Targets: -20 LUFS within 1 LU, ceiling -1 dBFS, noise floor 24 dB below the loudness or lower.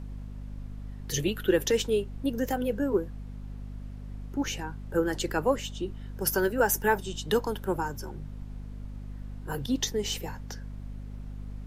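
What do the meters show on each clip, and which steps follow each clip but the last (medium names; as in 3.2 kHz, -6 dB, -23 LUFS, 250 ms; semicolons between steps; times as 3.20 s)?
hum 50 Hz; highest harmonic 250 Hz; hum level -37 dBFS; noise floor -41 dBFS; noise floor target -54 dBFS; loudness -29.5 LUFS; peak level -12.0 dBFS; loudness target -20.0 LUFS
-> hum notches 50/100/150/200/250 Hz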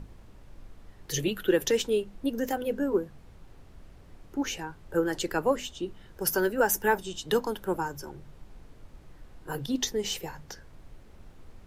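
hum not found; noise floor -52 dBFS; noise floor target -54 dBFS
-> noise print and reduce 6 dB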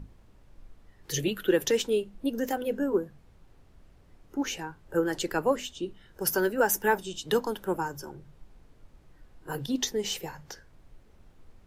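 noise floor -58 dBFS; loudness -29.5 LUFS; peak level -12.0 dBFS; loudness target -20.0 LUFS
-> trim +9.5 dB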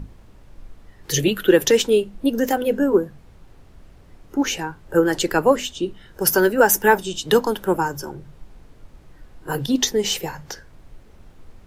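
loudness -20.0 LUFS; peak level -2.5 dBFS; noise floor -48 dBFS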